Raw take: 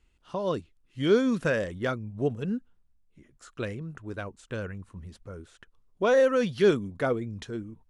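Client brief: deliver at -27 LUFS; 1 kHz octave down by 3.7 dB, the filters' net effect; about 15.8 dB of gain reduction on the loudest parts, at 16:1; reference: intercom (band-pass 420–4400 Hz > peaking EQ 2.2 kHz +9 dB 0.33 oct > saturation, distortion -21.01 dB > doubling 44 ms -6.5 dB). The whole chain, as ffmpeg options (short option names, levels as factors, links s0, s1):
-filter_complex "[0:a]equalizer=f=1000:t=o:g=-5.5,acompressor=threshold=0.02:ratio=16,highpass=420,lowpass=4400,equalizer=f=2200:t=o:w=0.33:g=9,asoftclip=threshold=0.0299,asplit=2[s0][s1];[s1]adelay=44,volume=0.473[s2];[s0][s2]amix=inputs=2:normalize=0,volume=7.08"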